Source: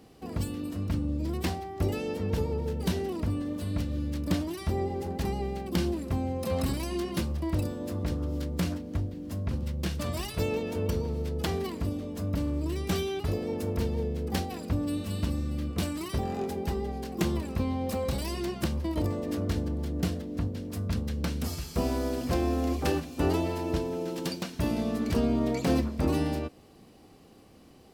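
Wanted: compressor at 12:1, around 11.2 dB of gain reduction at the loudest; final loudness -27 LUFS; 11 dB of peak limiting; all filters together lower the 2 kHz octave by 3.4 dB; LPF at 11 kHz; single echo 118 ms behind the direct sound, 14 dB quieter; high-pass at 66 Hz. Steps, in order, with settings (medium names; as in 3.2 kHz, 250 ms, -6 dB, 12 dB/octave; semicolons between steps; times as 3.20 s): high-pass 66 Hz; low-pass 11 kHz; peaking EQ 2 kHz -4.5 dB; compression 12:1, threshold -34 dBFS; peak limiter -33.5 dBFS; delay 118 ms -14 dB; trim +15 dB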